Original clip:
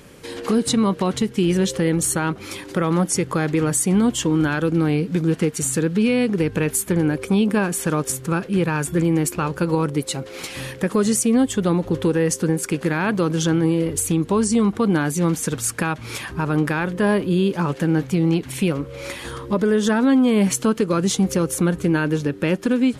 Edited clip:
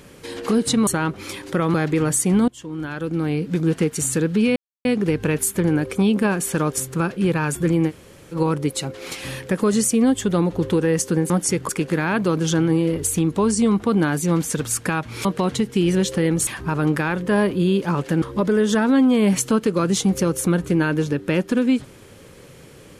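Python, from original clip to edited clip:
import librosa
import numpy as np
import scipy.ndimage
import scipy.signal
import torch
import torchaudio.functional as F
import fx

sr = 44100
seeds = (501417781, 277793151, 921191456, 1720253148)

y = fx.edit(x, sr, fx.move(start_s=0.87, length_s=1.22, to_s=16.18),
    fx.move(start_s=2.96, length_s=0.39, to_s=12.62),
    fx.fade_in_from(start_s=4.09, length_s=1.2, floor_db=-23.5),
    fx.insert_silence(at_s=6.17, length_s=0.29),
    fx.room_tone_fill(start_s=9.21, length_s=0.45, crossfade_s=0.06),
    fx.cut(start_s=17.93, length_s=1.43), tone=tone)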